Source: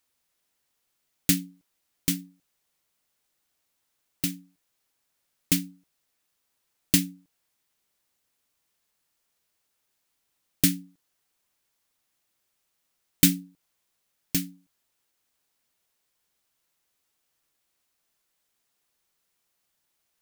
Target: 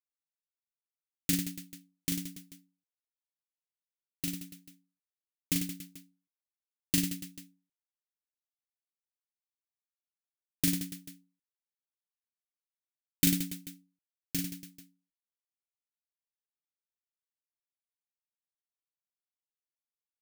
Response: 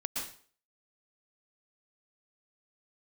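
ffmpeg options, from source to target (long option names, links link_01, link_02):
-af "agate=range=-33dB:threshold=-55dB:ratio=3:detection=peak,aecho=1:1:40|96|174.4|284.2|437.8:0.631|0.398|0.251|0.158|0.1,volume=-8dB"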